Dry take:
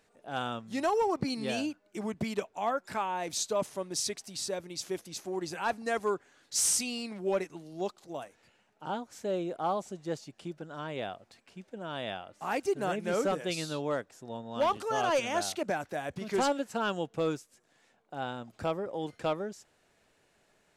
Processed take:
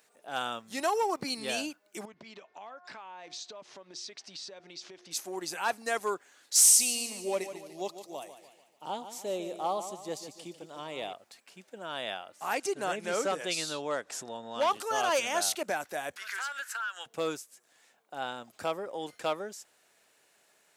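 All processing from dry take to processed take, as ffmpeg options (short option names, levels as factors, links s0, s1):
-filter_complex "[0:a]asettb=1/sr,asplit=3[s0][s1][s2];[s0]atrim=end=2.054[s3];[s1]atrim=start=2.05:end=5.11,asetpts=PTS-STARTPTS,afade=t=in:d=0.004:c=qsin,afade=t=out:st=3.056:d=0.004:c=qsin,lowpass=f=5100:w=0.5412,lowpass=f=5100:w=1.3066,bandreject=f=357.8:t=h:w=4,bandreject=f=715.6:t=h:w=4,bandreject=f=1073.4:t=h:w=4,bandreject=f=1431.2:t=h:w=4,bandreject=f=1789:t=h:w=4,bandreject=f=2146.8:t=h:w=4,acompressor=threshold=0.00708:ratio=8:attack=3.2:release=140:knee=1:detection=peak[s4];[s2]atrim=start=5.106[s5];[s3][s4]acrossfade=d=0.004:c1=hsin:c2=qsin[s6];[s6][s5]acrossfade=d=0.004:c1=qsin:c2=hsin,asettb=1/sr,asplit=3[s7][s8][s9];[s7]atrim=end=6.644[s10];[s8]atrim=start=6.64:end=11.13,asetpts=PTS-STARTPTS,afade=t=in:d=0.004:c=qsin,afade=t=out:st=4.486:d=0.004:c=qsin,equalizer=f=1500:w=3.5:g=-13,aecho=1:1:147|294|441|588|735:0.282|0.127|0.0571|0.0257|0.0116,atrim=end_sample=198009[s11];[s9]atrim=start=11.126[s12];[s10][s11]acrossfade=d=0.004:c1=hsin:c2=qsin[s13];[s13][s12]acrossfade=d=0.004:c1=qsin:c2=hsin,asettb=1/sr,asplit=3[s14][s15][s16];[s14]atrim=end=12.544[s17];[s15]atrim=start=12.54:end=14.71,asetpts=PTS-STARTPTS,afade=t=in:d=0.004:c=qsin,afade=t=out:st=2.166:d=0.004:c=qsin,lowpass=8800,acompressor=mode=upward:threshold=0.0282:ratio=2.5:attack=3.2:release=140:knee=2.83:detection=peak[s18];[s16]atrim=start=14.706[s19];[s17][s18]acrossfade=d=0.004:c1=hsin:c2=qsin[s20];[s20][s19]acrossfade=d=0.004:c1=qsin:c2=hsin,asettb=1/sr,asplit=3[s21][s22][s23];[s21]atrim=end=16.164[s24];[s22]atrim=start=16.16:end=17.06,asetpts=PTS-STARTPTS,afade=t=in:d=0.004:c=qsin,afade=t=out:st=0.896:d=0.004:c=qsin,highpass=f=1500:t=q:w=5.3,acompressor=threshold=0.0178:ratio=6:attack=3.2:release=140:knee=1:detection=peak[s25];[s23]atrim=start=17.056[s26];[s24][s25]acrossfade=d=0.004:c1=hsin:c2=qsin[s27];[s27][s26]acrossfade=d=0.004:c1=qsin:c2=hsin,highpass=f=630:p=1,highshelf=f=8500:g=12,volume=1.33"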